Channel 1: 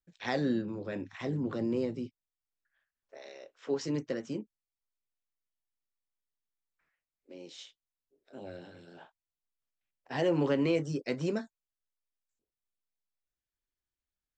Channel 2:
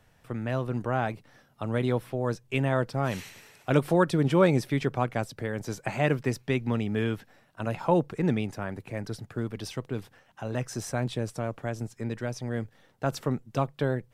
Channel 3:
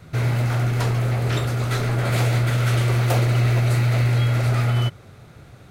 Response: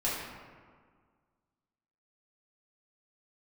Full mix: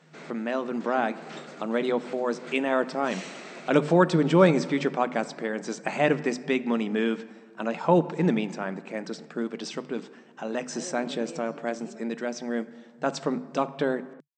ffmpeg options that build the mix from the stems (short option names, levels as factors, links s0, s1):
-filter_complex "[0:a]adelay=600,volume=0.188[s0];[1:a]bandreject=f=50:t=h:w=6,bandreject=f=100:t=h:w=6,bandreject=f=150:t=h:w=6,bandreject=f=200:t=h:w=6,bandreject=f=250:t=h:w=6,volume=1.33,asplit=3[s1][s2][s3];[s2]volume=0.0944[s4];[2:a]volume=0.2[s5];[s3]apad=whole_len=251594[s6];[s5][s6]sidechaincompress=threshold=0.0126:ratio=8:attack=8.4:release=113[s7];[3:a]atrim=start_sample=2205[s8];[s4][s8]afir=irnorm=-1:irlink=0[s9];[s0][s1][s7][s9]amix=inputs=4:normalize=0,afftfilt=real='re*between(b*sr/4096,150,8400)':imag='im*between(b*sr/4096,150,8400)':win_size=4096:overlap=0.75"